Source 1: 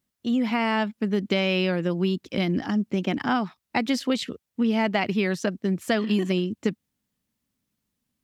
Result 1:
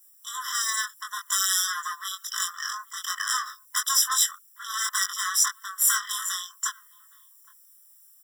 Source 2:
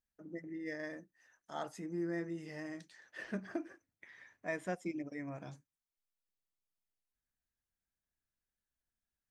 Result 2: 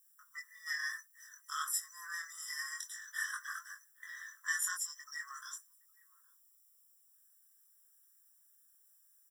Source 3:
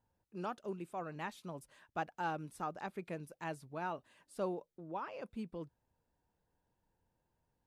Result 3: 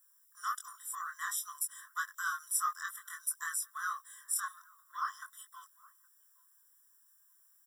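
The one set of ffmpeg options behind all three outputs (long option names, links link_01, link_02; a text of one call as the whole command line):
ffmpeg -i in.wav -filter_complex "[0:a]aeval=exprs='0.355*sin(PI/2*4.47*val(0)/0.355)':channel_layout=same,equalizer=frequency=470:width_type=o:width=1.1:gain=14.5,aexciter=amount=7.8:drive=7.5:freq=5600,bandreject=frequency=60:width_type=h:width=6,bandreject=frequency=120:width_type=h:width=6,bandreject=frequency=180:width_type=h:width=6,bandreject=frequency=240:width_type=h:width=6,bandreject=frequency=300:width_type=h:width=6,bandreject=frequency=360:width_type=h:width=6,asoftclip=type=tanh:threshold=-2dB,flanger=delay=20:depth=2.9:speed=0.56,asplit=2[link_01][link_02];[link_02]adelay=816.3,volume=-24dB,highshelf=frequency=4000:gain=-18.4[link_03];[link_01][link_03]amix=inputs=2:normalize=0,afftfilt=real='re*eq(mod(floor(b*sr/1024/1000),2),1)':imag='im*eq(mod(floor(b*sr/1024/1000),2),1)':win_size=1024:overlap=0.75,volume=-5dB" out.wav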